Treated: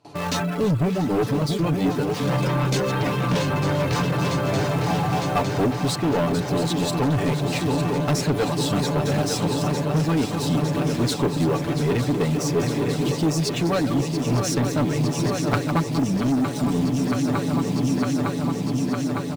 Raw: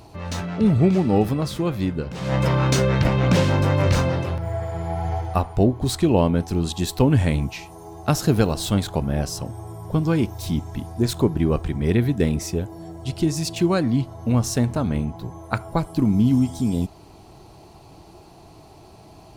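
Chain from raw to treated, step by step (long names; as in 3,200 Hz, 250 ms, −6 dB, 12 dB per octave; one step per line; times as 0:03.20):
delay that plays each chunk backwards 256 ms, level −9 dB
Bessel low-pass filter 8,000 Hz
comb filter 6.9 ms, depth 63%
noise gate with hold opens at −34 dBFS
high-pass filter 140 Hz 12 dB per octave
in parallel at −7.5 dB: bit reduction 5 bits
on the sum: reverb reduction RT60 0.68 s
on a send: feedback echo with a long and a short gap by turns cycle 907 ms, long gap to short 3 to 1, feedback 77%, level −10.5 dB
on the sum: soft clipping −15.5 dBFS, distortion −10 dB
speech leveller within 4 dB 0.5 s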